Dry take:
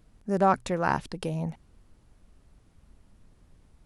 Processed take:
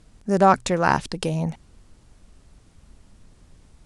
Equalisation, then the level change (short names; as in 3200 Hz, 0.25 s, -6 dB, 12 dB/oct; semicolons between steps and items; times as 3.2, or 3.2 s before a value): LPF 9400 Hz 24 dB/oct; high shelf 4000 Hz +8 dB; +6.0 dB